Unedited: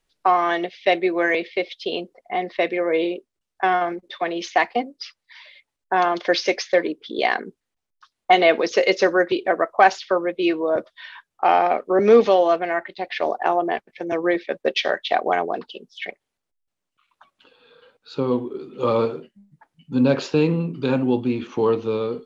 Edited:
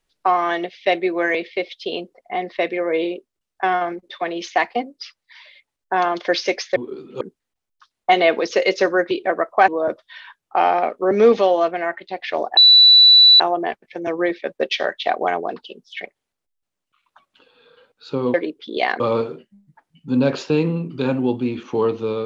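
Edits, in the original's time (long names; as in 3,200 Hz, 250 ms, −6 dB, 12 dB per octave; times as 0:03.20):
0:06.76–0:07.42: swap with 0:18.39–0:18.84
0:09.89–0:10.56: remove
0:13.45: insert tone 3,960 Hz −6 dBFS 0.83 s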